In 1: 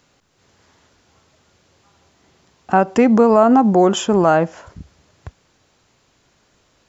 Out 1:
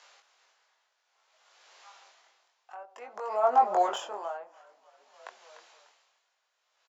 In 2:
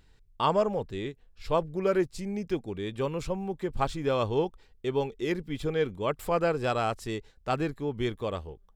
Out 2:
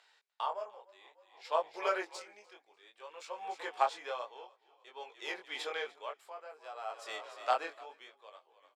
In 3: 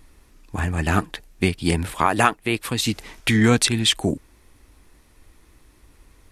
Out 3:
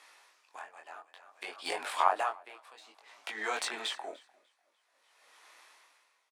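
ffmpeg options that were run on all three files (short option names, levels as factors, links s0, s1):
-filter_complex "[0:a]acrossover=split=1100[s0][s1];[s0]alimiter=limit=0.211:level=0:latency=1:release=15[s2];[s1]acompressor=threshold=0.0112:ratio=10[s3];[s2][s3]amix=inputs=2:normalize=0,highshelf=f=3800:g=5.5,adynamicsmooth=sensitivity=2.5:basefreq=5400,asplit=6[s4][s5][s6][s7][s8][s9];[s5]adelay=297,afreqshift=-39,volume=0.178[s10];[s6]adelay=594,afreqshift=-78,volume=0.0923[s11];[s7]adelay=891,afreqshift=-117,volume=0.0479[s12];[s8]adelay=1188,afreqshift=-156,volume=0.0251[s13];[s9]adelay=1485,afreqshift=-195,volume=0.013[s14];[s4][s10][s11][s12][s13][s14]amix=inputs=6:normalize=0,flanger=delay=19:depth=5.2:speed=0.6,highpass=f=660:w=0.5412,highpass=f=660:w=1.3066,highshelf=f=12000:g=5,aeval=exprs='val(0)*pow(10,-21*(0.5-0.5*cos(2*PI*0.54*n/s))/20)':c=same,volume=2.37"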